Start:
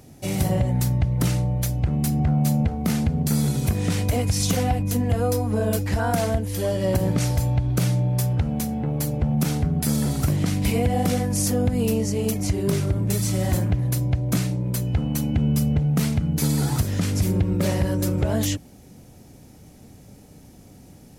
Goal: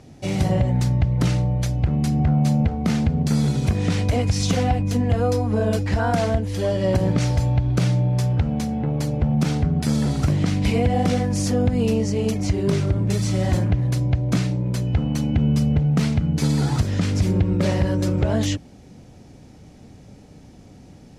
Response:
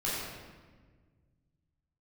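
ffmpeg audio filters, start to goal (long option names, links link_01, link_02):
-af "lowpass=5600,volume=2dB"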